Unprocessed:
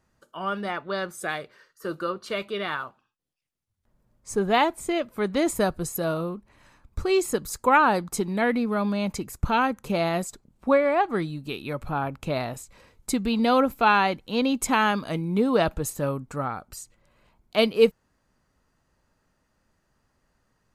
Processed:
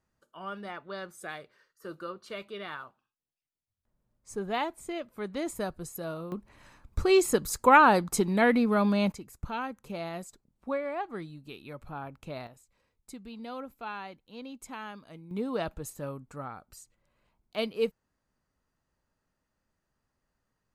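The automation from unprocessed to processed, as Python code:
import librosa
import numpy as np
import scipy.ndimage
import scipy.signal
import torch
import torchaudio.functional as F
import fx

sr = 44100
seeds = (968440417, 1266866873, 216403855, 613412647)

y = fx.gain(x, sr, db=fx.steps((0.0, -10.0), (6.32, 0.5), (9.12, -12.0), (12.47, -19.5), (15.31, -10.5)))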